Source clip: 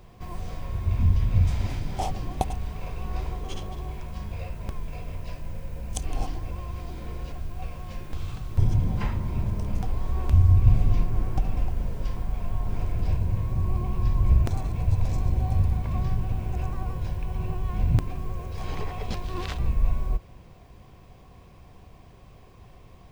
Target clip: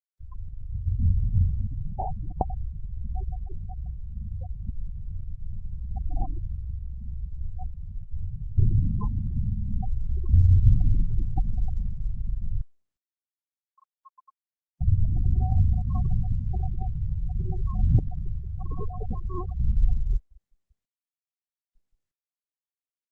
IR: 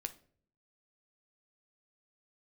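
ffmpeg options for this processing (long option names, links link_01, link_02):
-filter_complex "[0:a]dynaudnorm=framelen=440:gausssize=11:maxgain=3.5dB,asettb=1/sr,asplit=3[link_01][link_02][link_03];[link_01]atrim=end=12.614[link_04];[link_02]atrim=start=12.61:end=14.81,asetpts=PTS-STARTPTS,afade=type=in:duration=0.004:curve=qsin,afade=type=out:start_time=2.196:duration=0.004:curve=qsin,highpass=frequency=960:width=0.5412,highpass=frequency=960:width=1.3066[link_05];[link_03]atrim=start=14.806[link_06];[link_04][link_05]acrossfade=duration=0.004:curve1=hsin:curve2=qsin[link_07];[link_07][link_06]acrossfade=duration=0.004:curve1=qsin:curve2=hsin,acrossover=split=3600[link_08][link_09];[link_09]acompressor=threshold=-56dB:ratio=4:attack=1:release=60[link_10];[link_08][link_10]amix=inputs=2:normalize=0,aresample=16000,aresample=44100,afftfilt=real='re*gte(hypot(re,im),0.1)':imag='im*gte(hypot(re,im),0.1)':win_size=1024:overlap=0.75,highshelf=frequency=4500:gain=7.5,volume=-2dB" -ar 48000 -c:a libopus -b:a 32k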